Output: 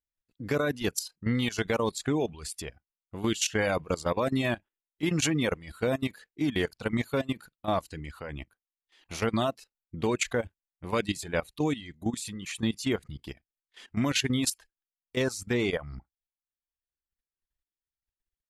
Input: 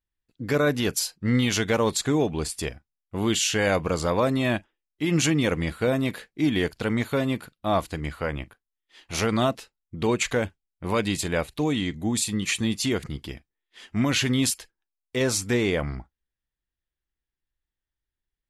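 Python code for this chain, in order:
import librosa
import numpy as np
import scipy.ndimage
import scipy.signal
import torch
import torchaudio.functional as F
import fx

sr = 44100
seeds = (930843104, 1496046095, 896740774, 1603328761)

y = fx.level_steps(x, sr, step_db=12)
y = fx.dereverb_blind(y, sr, rt60_s=0.67)
y = F.gain(torch.from_numpy(y), -1.0).numpy()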